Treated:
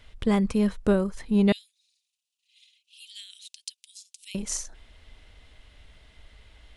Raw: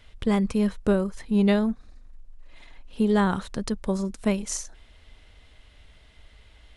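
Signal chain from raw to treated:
0:01.52–0:04.35: Butterworth high-pass 2,700 Hz 48 dB per octave

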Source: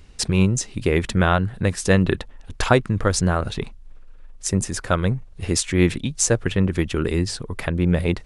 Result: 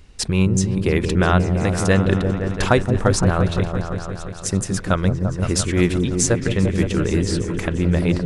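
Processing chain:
echo whose low-pass opens from repeat to repeat 172 ms, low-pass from 400 Hz, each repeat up 1 octave, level −3 dB

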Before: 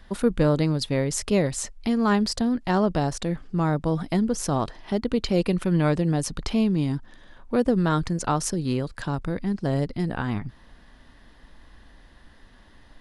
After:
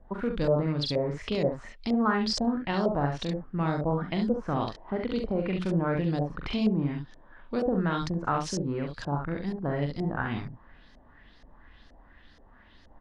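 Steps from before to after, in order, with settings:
brickwall limiter −14 dBFS, peak gain reduction 4.5 dB
ambience of single reflections 42 ms −6.5 dB, 69 ms −6 dB
auto-filter low-pass saw up 2.1 Hz 570–6,400 Hz
level −6 dB

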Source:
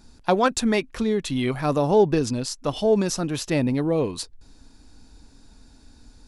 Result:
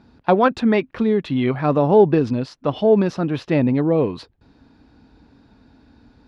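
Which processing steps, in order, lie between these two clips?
high-pass filter 92 Hz 12 dB per octave
high-frequency loss of the air 350 metres
level +5.5 dB

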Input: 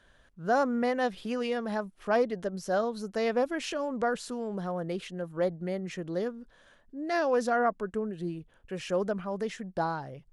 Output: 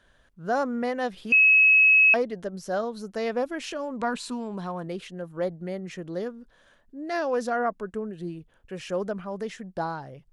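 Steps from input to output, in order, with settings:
0:01.32–0:02.14: beep over 2,570 Hz −13.5 dBFS
0:03.99–0:04.87: thirty-one-band graphic EQ 250 Hz +6 dB, 500 Hz −5 dB, 1,000 Hz +9 dB, 2,500 Hz +9 dB, 4,000 Hz +8 dB, 8,000 Hz +5 dB

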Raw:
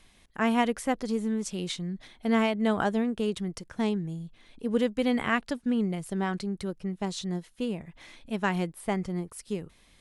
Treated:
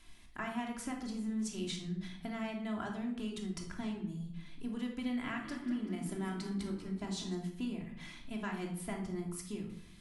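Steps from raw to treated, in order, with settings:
parametric band 500 Hz −9 dB 0.93 octaves
mains-hum notches 60/120/180 Hz
downward compressor, threshold −36 dBFS, peak gain reduction 13.5 dB
0:05.01–0:07.35: echo with shifted repeats 193 ms, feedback 55%, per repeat +35 Hz, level −12.5 dB
convolution reverb RT60 0.70 s, pre-delay 3 ms, DRR −0.5 dB
level −3.5 dB

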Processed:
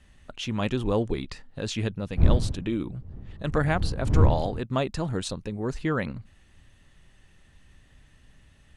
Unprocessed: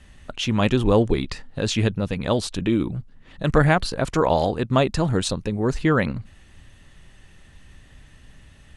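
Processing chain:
0:02.16–0:04.59: wind on the microphone 96 Hz −17 dBFS
level −7.5 dB

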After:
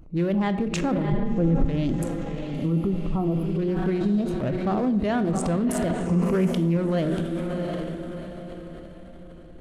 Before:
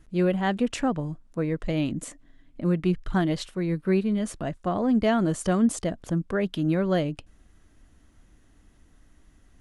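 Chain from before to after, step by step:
adaptive Wiener filter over 25 samples
tape wow and flutter 140 cents
feedback delay with all-pass diffusion 705 ms, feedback 40%, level −11 dB
transient designer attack −4 dB, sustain +7 dB
0:02.59–0:03.51: healed spectral selection 1,400–10,000 Hz
brickwall limiter −19.5 dBFS, peak gain reduction 6.5 dB
0:01.12–0:01.65: spectral tilt −3.5 dB per octave
on a send at −10.5 dB: convolution reverb RT60 0.80 s, pre-delay 15 ms
on the sum: downward compressor 2 to 1, threshold −31 dBFS, peak gain reduction 10 dB
0:06.06–0:06.77: EQ curve with evenly spaced ripples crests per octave 0.8, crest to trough 8 dB
level +7 dB

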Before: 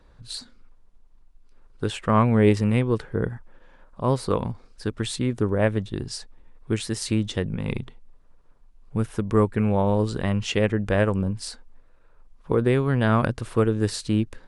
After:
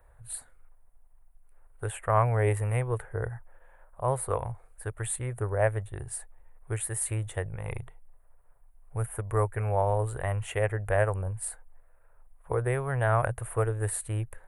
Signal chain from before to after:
drawn EQ curve 120 Hz 0 dB, 220 Hz −23 dB, 400 Hz −6 dB, 700 Hz +5 dB, 1,100 Hz −1 dB, 1,900 Hz +1 dB, 5,100 Hz −23 dB, 9,700 Hz +13 dB
level −3.5 dB

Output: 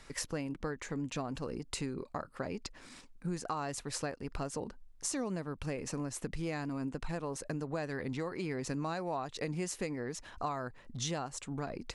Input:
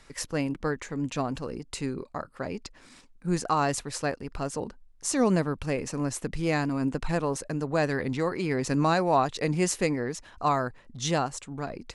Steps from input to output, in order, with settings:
downward compressor 6 to 1, threshold −34 dBFS, peak gain reduction 15.5 dB

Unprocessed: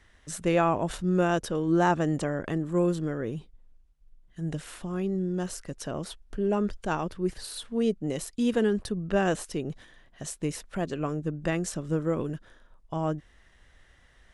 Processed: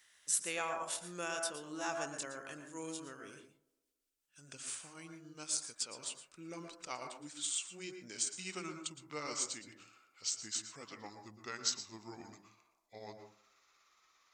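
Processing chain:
pitch glide at a constant tempo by −7.5 semitones starting unshifted
first difference
delay with a band-pass on its return 110 ms, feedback 60%, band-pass 440 Hz, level −23 dB
convolution reverb RT60 0.40 s, pre-delay 107 ms, DRR 5.5 dB
level +5.5 dB

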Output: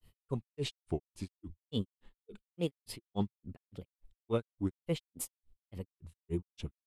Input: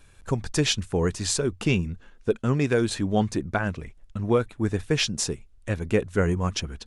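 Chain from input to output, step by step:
granular cloud 144 ms, grains 3.5 per second, spray 27 ms, pitch spread up and down by 3 semitones
formants moved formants +2 semitones
graphic EQ with 15 bands 630 Hz −4 dB, 1,600 Hz −9 dB, 6,300 Hz −9 dB
level −6.5 dB

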